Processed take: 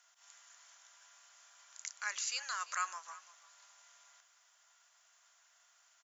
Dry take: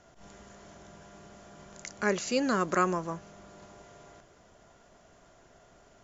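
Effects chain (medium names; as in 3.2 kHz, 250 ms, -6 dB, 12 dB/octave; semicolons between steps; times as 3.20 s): high-pass 950 Hz 24 dB/octave; tilt EQ +3.5 dB/octave; on a send: delay 342 ms -18.5 dB; on the sum: trim -9 dB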